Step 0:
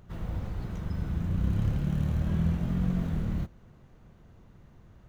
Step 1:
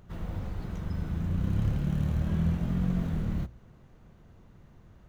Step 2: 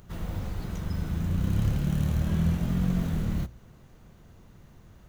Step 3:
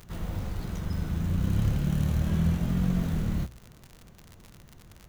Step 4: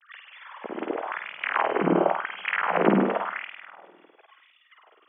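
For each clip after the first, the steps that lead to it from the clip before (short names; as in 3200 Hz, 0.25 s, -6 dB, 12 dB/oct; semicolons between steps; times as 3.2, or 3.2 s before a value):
de-hum 60.11 Hz, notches 2
high shelf 4100 Hz +10.5 dB; gain +2 dB
crackle 73/s -35 dBFS
sine-wave speech; flutter echo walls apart 8.8 m, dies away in 1 s; LFO high-pass sine 0.93 Hz 300–2600 Hz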